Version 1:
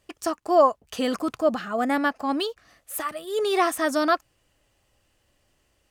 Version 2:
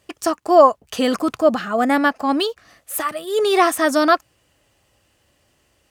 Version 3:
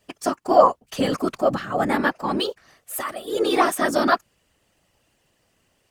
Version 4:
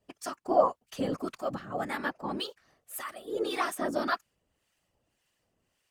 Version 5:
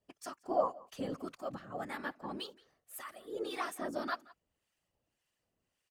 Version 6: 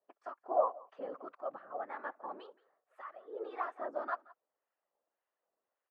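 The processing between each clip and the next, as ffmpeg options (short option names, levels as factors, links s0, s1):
-af "highpass=59,volume=2.11"
-af "afftfilt=real='hypot(re,im)*cos(2*PI*random(0))':imag='hypot(re,im)*sin(2*PI*random(1))':win_size=512:overlap=0.75,volume=1.26"
-filter_complex "[0:a]acrossover=split=1000[s0][s1];[s0]aeval=exprs='val(0)*(1-0.7/2+0.7/2*cos(2*PI*1.8*n/s))':c=same[s2];[s1]aeval=exprs='val(0)*(1-0.7/2-0.7/2*cos(2*PI*1.8*n/s))':c=same[s3];[s2][s3]amix=inputs=2:normalize=0,volume=0.422"
-filter_complex "[0:a]asplit=2[s0][s1];[s1]adelay=174.9,volume=0.0794,highshelf=f=4000:g=-3.94[s2];[s0][s2]amix=inputs=2:normalize=0,volume=0.422"
-af "asuperpass=centerf=830:order=4:qfactor=0.83,volume=1.19"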